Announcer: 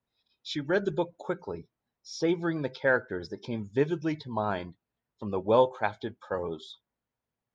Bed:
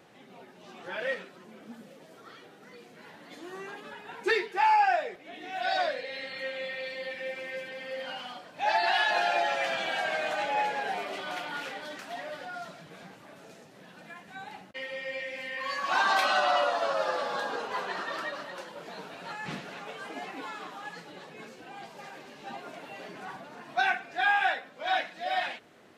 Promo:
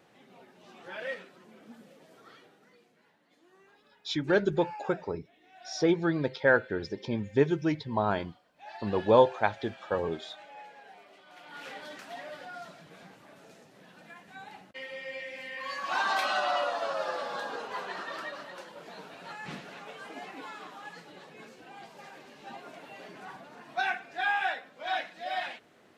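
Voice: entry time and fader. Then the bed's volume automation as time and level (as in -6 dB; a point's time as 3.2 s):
3.60 s, +2.0 dB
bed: 2.35 s -4.5 dB
3.21 s -19.5 dB
11.28 s -19.5 dB
11.71 s -3.5 dB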